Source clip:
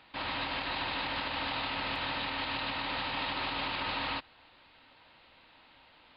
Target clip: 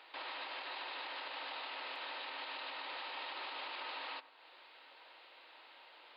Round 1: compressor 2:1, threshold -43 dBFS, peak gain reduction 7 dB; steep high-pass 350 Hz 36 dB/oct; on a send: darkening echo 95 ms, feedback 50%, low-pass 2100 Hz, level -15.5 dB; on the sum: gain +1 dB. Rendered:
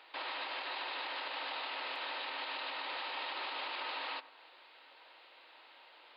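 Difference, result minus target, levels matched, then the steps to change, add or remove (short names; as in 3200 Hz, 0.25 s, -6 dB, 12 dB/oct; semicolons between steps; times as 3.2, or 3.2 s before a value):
compressor: peak gain reduction -4 dB
change: compressor 2:1, threshold -51 dBFS, peak gain reduction 11 dB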